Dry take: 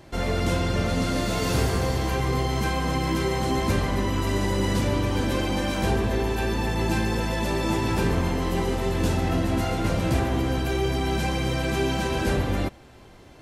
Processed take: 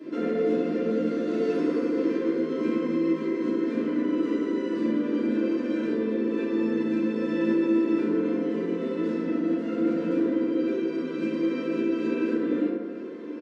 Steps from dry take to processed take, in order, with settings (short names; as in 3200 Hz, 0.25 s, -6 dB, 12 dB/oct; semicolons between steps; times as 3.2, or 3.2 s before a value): steep high-pass 190 Hz 36 dB/oct; tilt shelf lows +5 dB, about 810 Hz; compressor 5:1, threshold -35 dBFS, peak gain reduction 15 dB; tape spacing loss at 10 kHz 27 dB; fixed phaser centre 330 Hz, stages 4; doubler 13 ms -5.5 dB; FDN reverb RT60 1.9 s, low-frequency decay 0.85×, high-frequency decay 0.3×, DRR -9 dB; gain +4 dB